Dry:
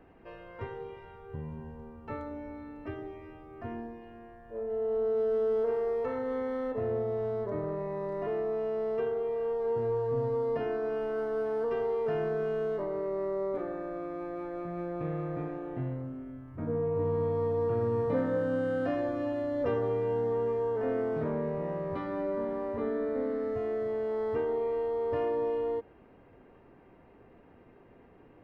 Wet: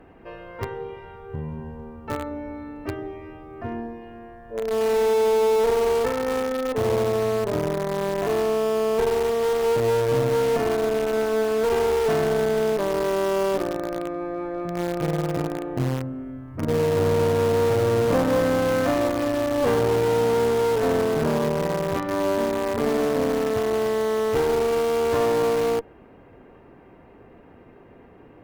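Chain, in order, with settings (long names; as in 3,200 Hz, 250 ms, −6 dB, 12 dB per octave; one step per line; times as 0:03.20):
in parallel at −7 dB: bit reduction 5 bits
on the sum: asymmetric clip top −30.5 dBFS
level +8 dB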